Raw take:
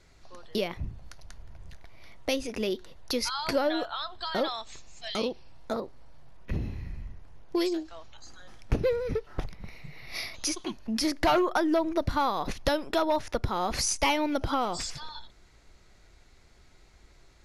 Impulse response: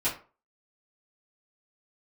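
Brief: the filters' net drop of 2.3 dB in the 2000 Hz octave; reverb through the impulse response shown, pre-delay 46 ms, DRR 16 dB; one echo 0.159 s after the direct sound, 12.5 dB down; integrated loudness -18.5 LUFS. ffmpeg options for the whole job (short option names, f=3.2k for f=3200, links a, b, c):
-filter_complex "[0:a]equalizer=f=2k:t=o:g=-3,aecho=1:1:159:0.237,asplit=2[a][b];[1:a]atrim=start_sample=2205,adelay=46[c];[b][c]afir=irnorm=-1:irlink=0,volume=-24.5dB[d];[a][d]amix=inputs=2:normalize=0,volume=11.5dB"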